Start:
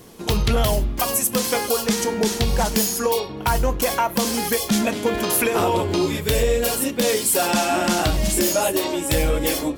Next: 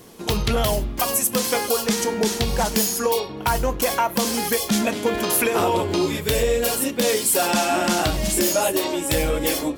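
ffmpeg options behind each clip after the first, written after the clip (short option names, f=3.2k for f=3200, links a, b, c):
-af "lowshelf=f=120:g=-5"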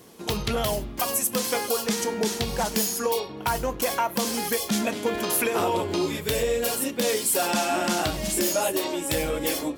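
-af "highpass=f=85:p=1,volume=-4dB"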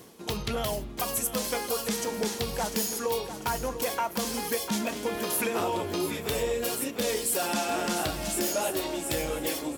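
-af "areverse,acompressor=mode=upward:threshold=-29dB:ratio=2.5,areverse,aecho=1:1:697|1394|2091|2788|3485:0.282|0.132|0.0623|0.0293|0.0138,volume=-4.5dB"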